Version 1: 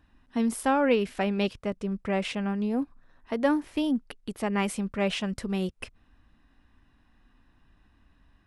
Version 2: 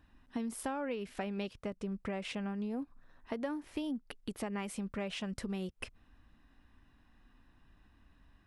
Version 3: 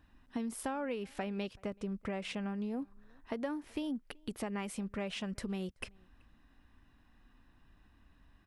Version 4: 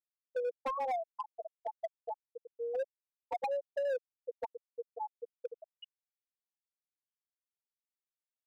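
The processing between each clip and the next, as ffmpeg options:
-af "acompressor=threshold=-33dB:ratio=6,volume=-2dB"
-filter_complex "[0:a]asplit=2[a][b];[b]adelay=379,volume=-28dB,highshelf=f=4k:g=-8.53[c];[a][c]amix=inputs=2:normalize=0"
-af "highpass=f=230:t=q:w=0.5412,highpass=f=230:t=q:w=1.307,lowpass=f=3.4k:t=q:w=0.5176,lowpass=f=3.4k:t=q:w=0.7071,lowpass=f=3.4k:t=q:w=1.932,afreqshift=260,afftfilt=real='re*gte(hypot(re,im),0.1)':imag='im*gte(hypot(re,im),0.1)':win_size=1024:overlap=0.75,asoftclip=type=hard:threshold=-37.5dB,volume=7.5dB"

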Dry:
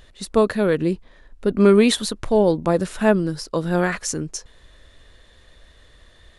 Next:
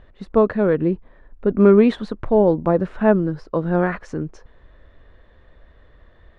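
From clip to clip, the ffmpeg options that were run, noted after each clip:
-af "lowpass=1.5k,volume=1.5dB"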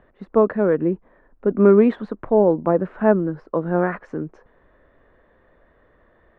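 -filter_complex "[0:a]acrossover=split=160 2300:gain=0.224 1 0.126[a][b][c];[a][b][c]amix=inputs=3:normalize=0"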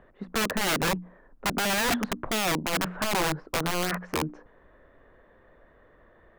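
-af "bandreject=f=60:t=h:w=6,bandreject=f=120:t=h:w=6,bandreject=f=180:t=h:w=6,bandreject=f=240:t=h:w=6,bandreject=f=300:t=h:w=6,alimiter=limit=-13.5dB:level=0:latency=1:release=72,aeval=exprs='(mod(10*val(0)+1,2)-1)/10':c=same"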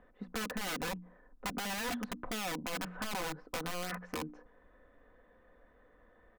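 -af "aecho=1:1:4:0.5,acompressor=threshold=-29dB:ratio=2.5,volume=-7.5dB"

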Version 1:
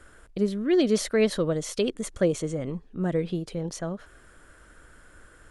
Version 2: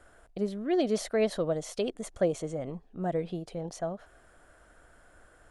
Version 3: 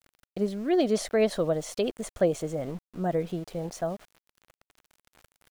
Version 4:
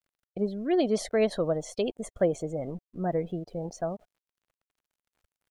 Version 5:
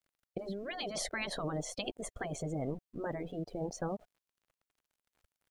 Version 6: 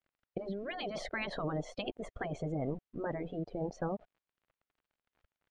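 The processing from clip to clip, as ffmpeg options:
-af "equalizer=f=710:t=o:w=0.62:g=12,volume=-7dB"
-af "aeval=exprs='val(0)*gte(abs(val(0)),0.00355)':c=same,volume=3dB"
-af "afftdn=nr=18:nf=-44,volume=-1dB"
-af "afftfilt=real='re*lt(hypot(re,im),0.178)':imag='im*lt(hypot(re,im),0.178)':win_size=1024:overlap=0.75"
-af "lowpass=3k,volume=1dB"

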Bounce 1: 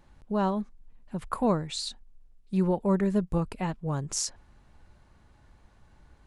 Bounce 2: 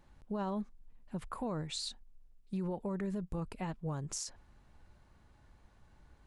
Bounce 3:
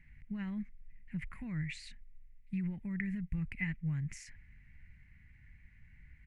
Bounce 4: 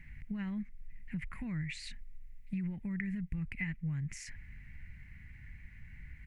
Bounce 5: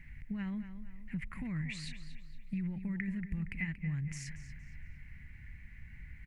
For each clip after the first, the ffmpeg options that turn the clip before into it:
-af "alimiter=level_in=1dB:limit=-24dB:level=0:latency=1:release=62,volume=-1dB,volume=-4.5dB"
-af "firequalizer=gain_entry='entry(150,0);entry(450,-28);entry(1200,-20);entry(2000,13);entry(3500,-17)':delay=0.05:min_phase=1,volume=4.5dB"
-af "acompressor=threshold=-49dB:ratio=2,volume=8dB"
-filter_complex "[0:a]asplit=2[a][b];[b]adelay=233,lowpass=f=4.6k:p=1,volume=-10.5dB,asplit=2[c][d];[d]adelay=233,lowpass=f=4.6k:p=1,volume=0.44,asplit=2[e][f];[f]adelay=233,lowpass=f=4.6k:p=1,volume=0.44,asplit=2[g][h];[h]adelay=233,lowpass=f=4.6k:p=1,volume=0.44,asplit=2[i][j];[j]adelay=233,lowpass=f=4.6k:p=1,volume=0.44[k];[a][c][e][g][i][k]amix=inputs=6:normalize=0"

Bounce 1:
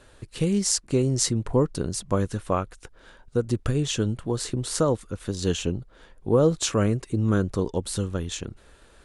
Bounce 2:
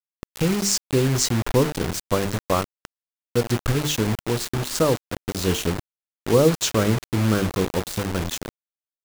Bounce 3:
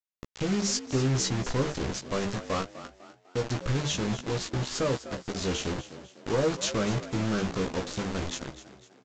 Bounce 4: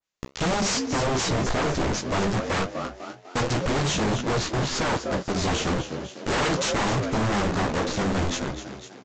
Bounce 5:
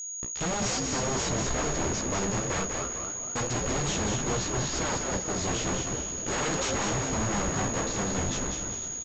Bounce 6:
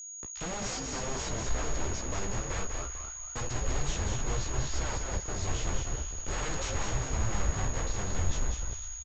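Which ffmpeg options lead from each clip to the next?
-af "lowpass=f=7.9k:w=0.5412,lowpass=f=7.9k:w=1.3066,bandreject=f=50:t=h:w=6,bandreject=f=100:t=h:w=6,bandreject=f=150:t=h:w=6,bandreject=f=200:t=h:w=6,bandreject=f=250:t=h:w=6,bandreject=f=300:t=h:w=6,bandreject=f=350:t=h:w=6,bandreject=f=400:t=h:w=6,bandreject=f=450:t=h:w=6,acrusher=bits=4:mix=0:aa=0.000001,volume=3dB"
-filter_complex "[0:a]aresample=16000,asoftclip=type=tanh:threshold=-18dB,aresample=44100,asplit=2[a][b];[b]adelay=15,volume=-5dB[c];[a][c]amix=inputs=2:normalize=0,asplit=5[d][e][f][g][h];[e]adelay=250,afreqshift=60,volume=-14dB[i];[f]adelay=500,afreqshift=120,volume=-21.5dB[j];[g]adelay=750,afreqshift=180,volume=-29.1dB[k];[h]adelay=1000,afreqshift=240,volume=-36.6dB[l];[d][i][j][k][l]amix=inputs=5:normalize=0,volume=-5dB"
-af "flanger=delay=8.5:depth=7.6:regen=-52:speed=1.9:shape=triangular,aresample=16000,aeval=exprs='0.1*sin(PI/2*4.47*val(0)/0.1)':c=same,aresample=44100,adynamicequalizer=threshold=0.01:dfrequency=2200:dqfactor=0.7:tfrequency=2200:tqfactor=0.7:attack=5:release=100:ratio=0.375:range=2.5:mode=cutabove:tftype=highshelf"
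-filter_complex "[0:a]aeval=exprs='val(0)+0.0398*sin(2*PI*6700*n/s)':c=same,asplit=2[a][b];[b]asplit=5[c][d][e][f][g];[c]adelay=196,afreqshift=-61,volume=-5dB[h];[d]adelay=392,afreqshift=-122,volume=-12.3dB[i];[e]adelay=588,afreqshift=-183,volume=-19.7dB[j];[f]adelay=784,afreqshift=-244,volume=-27dB[k];[g]adelay=980,afreqshift=-305,volume=-34.3dB[l];[h][i][j][k][l]amix=inputs=5:normalize=0[m];[a][m]amix=inputs=2:normalize=0,volume=-6.5dB"
-filter_complex "[0:a]asubboost=boost=8:cutoff=74,acrossover=split=100|740|3500[a][b][c][d];[b]acrusher=bits=5:mix=0:aa=0.5[e];[c]asplit=2[f][g];[g]adelay=13,volume=-12dB[h];[f][h]amix=inputs=2:normalize=0[i];[a][e][i][d]amix=inputs=4:normalize=0,volume=-6.5dB"

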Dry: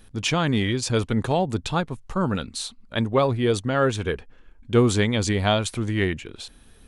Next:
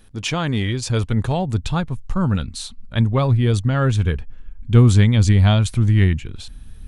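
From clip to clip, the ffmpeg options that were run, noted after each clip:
-af "asubboost=boost=7:cutoff=160"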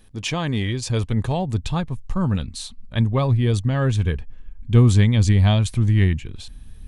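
-af "bandreject=f=1.4k:w=8,volume=-2dB"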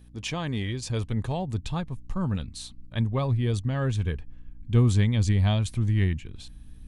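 -af "aeval=exprs='val(0)+0.00631*(sin(2*PI*60*n/s)+sin(2*PI*2*60*n/s)/2+sin(2*PI*3*60*n/s)/3+sin(2*PI*4*60*n/s)/4+sin(2*PI*5*60*n/s)/5)':c=same,volume=-6.5dB"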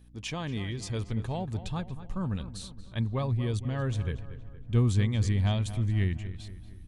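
-filter_complex "[0:a]asplit=2[a][b];[b]adelay=233,lowpass=f=2.9k:p=1,volume=-13dB,asplit=2[c][d];[d]adelay=233,lowpass=f=2.9k:p=1,volume=0.52,asplit=2[e][f];[f]adelay=233,lowpass=f=2.9k:p=1,volume=0.52,asplit=2[g][h];[h]adelay=233,lowpass=f=2.9k:p=1,volume=0.52,asplit=2[i][j];[j]adelay=233,lowpass=f=2.9k:p=1,volume=0.52[k];[a][c][e][g][i][k]amix=inputs=6:normalize=0,volume=-4dB"

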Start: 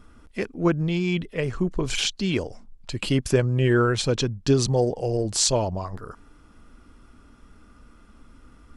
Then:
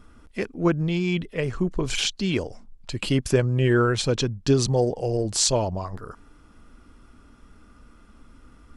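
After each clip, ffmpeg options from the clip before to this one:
-af anull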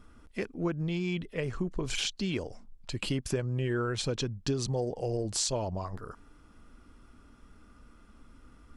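-af "acompressor=threshold=-24dB:ratio=3,volume=-4.5dB"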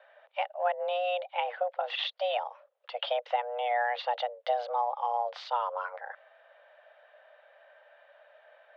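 -af "highpass=f=170:t=q:w=0.5412,highpass=f=170:t=q:w=1.307,lowpass=f=3.2k:t=q:w=0.5176,lowpass=f=3.2k:t=q:w=0.7071,lowpass=f=3.2k:t=q:w=1.932,afreqshift=360,volume=3dB"

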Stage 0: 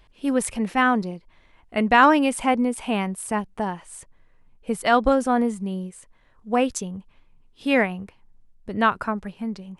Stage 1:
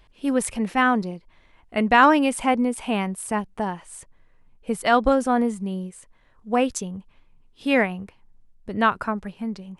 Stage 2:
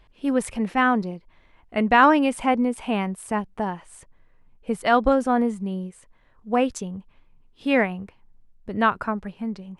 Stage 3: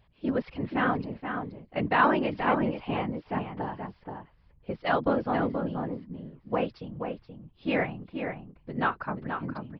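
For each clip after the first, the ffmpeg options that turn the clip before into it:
-af anull
-af "highshelf=f=4.7k:g=-8"
-filter_complex "[0:a]afftfilt=real='hypot(re,im)*cos(2*PI*random(0))':imag='hypot(re,im)*sin(2*PI*random(1))':win_size=512:overlap=0.75,asplit=2[a][b];[b]adelay=478.1,volume=-6dB,highshelf=f=4k:g=-10.8[c];[a][c]amix=inputs=2:normalize=0,aresample=11025,aresample=44100,volume=-1dB"

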